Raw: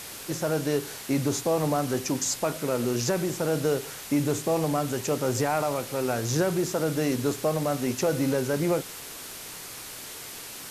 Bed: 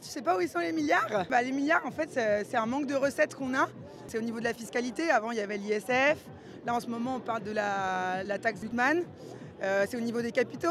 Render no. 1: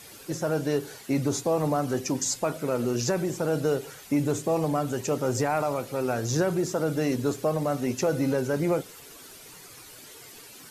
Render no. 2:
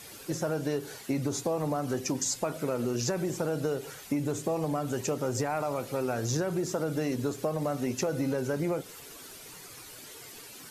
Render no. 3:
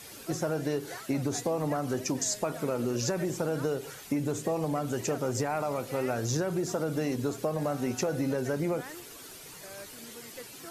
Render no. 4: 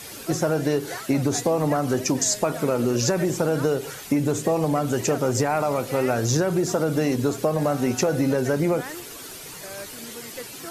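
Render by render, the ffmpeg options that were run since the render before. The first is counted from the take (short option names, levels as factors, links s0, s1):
-af "afftdn=nr=11:nf=-41"
-af "acompressor=threshold=0.0501:ratio=6"
-filter_complex "[1:a]volume=0.112[s0];[0:a][s0]amix=inputs=2:normalize=0"
-af "volume=2.51"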